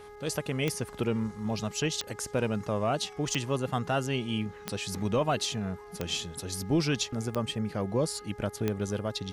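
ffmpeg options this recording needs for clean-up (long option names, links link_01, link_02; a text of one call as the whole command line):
ffmpeg -i in.wav -af "adeclick=threshold=4,bandreject=frequency=415.4:width_type=h:width=4,bandreject=frequency=830.8:width_type=h:width=4,bandreject=frequency=1246.2:width_type=h:width=4,bandreject=frequency=1661.6:width_type=h:width=4,bandreject=frequency=2077:width_type=h:width=4" out.wav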